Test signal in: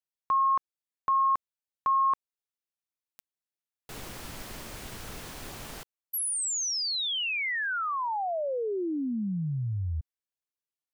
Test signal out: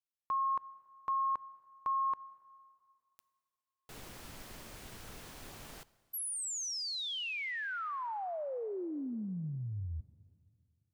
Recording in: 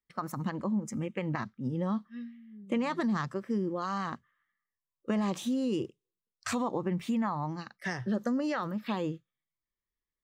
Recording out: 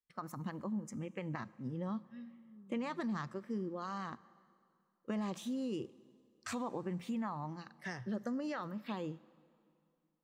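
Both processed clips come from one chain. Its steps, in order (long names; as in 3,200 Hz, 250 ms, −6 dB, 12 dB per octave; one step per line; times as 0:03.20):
dense smooth reverb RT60 2.5 s, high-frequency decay 0.9×, DRR 19.5 dB
level −8 dB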